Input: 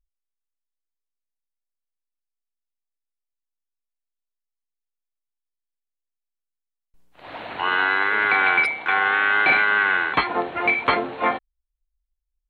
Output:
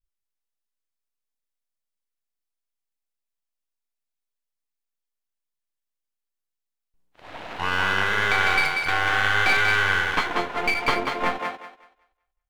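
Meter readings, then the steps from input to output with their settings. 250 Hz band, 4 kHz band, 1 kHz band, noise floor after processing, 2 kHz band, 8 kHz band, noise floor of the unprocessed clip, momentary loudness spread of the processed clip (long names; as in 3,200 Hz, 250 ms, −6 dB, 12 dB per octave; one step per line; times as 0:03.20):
−2.0 dB, +3.5 dB, −2.5 dB, −84 dBFS, −2.5 dB, can't be measured, −84 dBFS, 12 LU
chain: gain on one half-wave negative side −12 dB
feedback echo with a high-pass in the loop 189 ms, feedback 25%, high-pass 240 Hz, level −4.5 dB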